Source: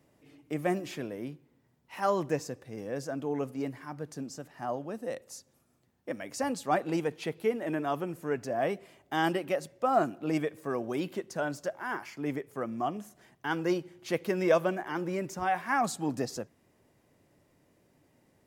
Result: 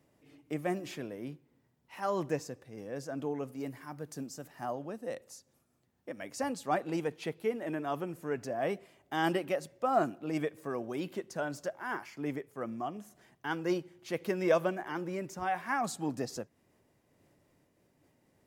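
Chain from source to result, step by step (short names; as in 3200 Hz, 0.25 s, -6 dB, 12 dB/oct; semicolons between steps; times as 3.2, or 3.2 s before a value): 3.5–4.73 high shelf 9700 Hz +11.5 dB; noise-modulated level, depth 60%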